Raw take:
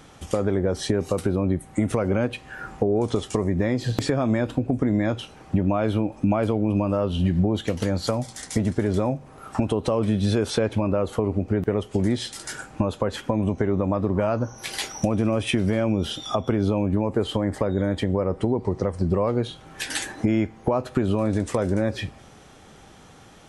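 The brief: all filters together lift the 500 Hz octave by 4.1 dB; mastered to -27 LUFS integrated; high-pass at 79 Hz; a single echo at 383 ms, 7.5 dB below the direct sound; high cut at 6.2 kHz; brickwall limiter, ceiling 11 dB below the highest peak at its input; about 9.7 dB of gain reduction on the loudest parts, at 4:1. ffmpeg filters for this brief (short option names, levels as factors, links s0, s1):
-af "highpass=79,lowpass=6200,equalizer=f=500:t=o:g=5,acompressor=threshold=0.0398:ratio=4,alimiter=limit=0.0708:level=0:latency=1,aecho=1:1:383:0.422,volume=2"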